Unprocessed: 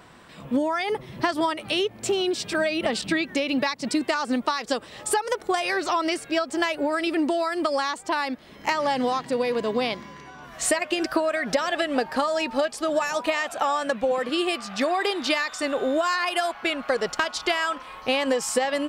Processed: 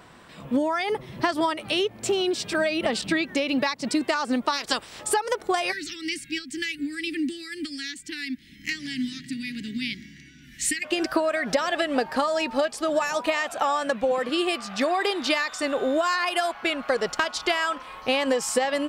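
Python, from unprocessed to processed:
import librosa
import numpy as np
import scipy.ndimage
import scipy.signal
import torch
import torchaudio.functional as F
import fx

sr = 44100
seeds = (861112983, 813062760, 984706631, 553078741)

y = fx.spec_clip(x, sr, under_db=17, at=(4.52, 4.99), fade=0.02)
y = fx.ellip_bandstop(y, sr, low_hz=290.0, high_hz=1900.0, order=3, stop_db=40, at=(5.71, 10.83), fade=0.02)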